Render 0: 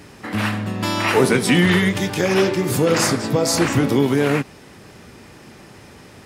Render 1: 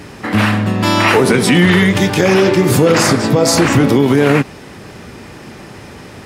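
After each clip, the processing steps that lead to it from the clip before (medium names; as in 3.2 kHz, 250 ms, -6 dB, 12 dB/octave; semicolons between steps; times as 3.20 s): treble shelf 4.9 kHz -4.5 dB; loudness maximiser +10.5 dB; trim -1 dB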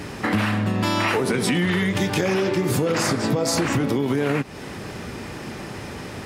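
compression 6:1, threshold -19 dBFS, peak gain reduction 12 dB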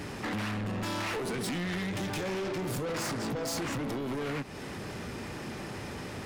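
saturation -26.5 dBFS, distortion -7 dB; trim -4.5 dB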